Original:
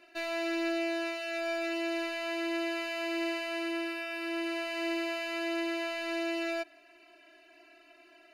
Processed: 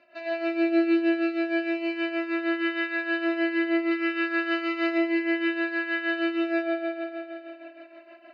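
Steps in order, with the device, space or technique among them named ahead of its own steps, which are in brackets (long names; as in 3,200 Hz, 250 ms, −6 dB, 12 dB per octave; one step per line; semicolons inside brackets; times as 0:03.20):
combo amplifier with spring reverb and tremolo (spring reverb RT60 3.3 s, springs 51 ms, chirp 30 ms, DRR −8.5 dB; amplitude tremolo 6.4 Hz, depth 66%; loudspeaker in its box 82–4,300 Hz, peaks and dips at 400 Hz −8 dB, 590 Hz +7 dB, 3,300 Hz −9 dB)
0:03.91–0:04.98: high-shelf EQ 4,400 Hz +11 dB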